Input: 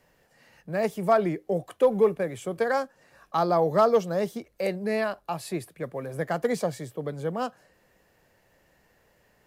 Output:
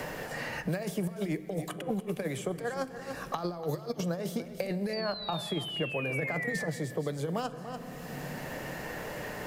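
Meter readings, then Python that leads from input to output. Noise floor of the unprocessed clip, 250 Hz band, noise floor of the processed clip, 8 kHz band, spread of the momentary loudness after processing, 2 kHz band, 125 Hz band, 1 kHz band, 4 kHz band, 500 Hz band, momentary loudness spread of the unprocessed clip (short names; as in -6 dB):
-65 dBFS, -2.5 dB, -44 dBFS, +0.5 dB, 7 LU, +0.5 dB, 0.0 dB, -9.5 dB, +5.5 dB, -9.5 dB, 13 LU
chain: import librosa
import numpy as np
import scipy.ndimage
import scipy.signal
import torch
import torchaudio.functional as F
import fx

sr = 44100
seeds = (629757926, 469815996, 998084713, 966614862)

p1 = fx.over_compress(x, sr, threshold_db=-29.0, ratio=-0.5)
p2 = fx.spec_paint(p1, sr, seeds[0], shape='fall', start_s=4.93, length_s=1.73, low_hz=1700.0, high_hz=4700.0, level_db=-33.0)
p3 = p2 + fx.echo_single(p2, sr, ms=290, db=-15.5, dry=0)
p4 = fx.room_shoebox(p3, sr, seeds[1], volume_m3=2900.0, walls='mixed', distance_m=0.46)
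p5 = fx.band_squash(p4, sr, depth_pct=100)
y = p5 * librosa.db_to_amplitude(-4.0)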